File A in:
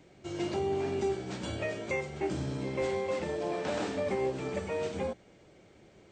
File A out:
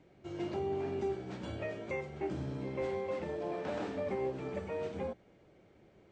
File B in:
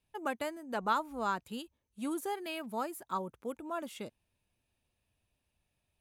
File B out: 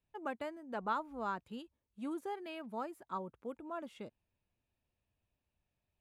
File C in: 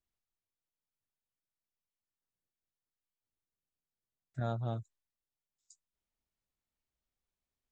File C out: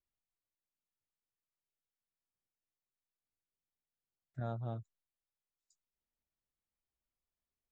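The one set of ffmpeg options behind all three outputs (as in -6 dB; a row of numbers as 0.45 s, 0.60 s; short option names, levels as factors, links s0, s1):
-af "aemphasis=mode=reproduction:type=75kf,volume=0.631"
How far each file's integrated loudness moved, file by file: -4.5 LU, -5.0 LU, -4.0 LU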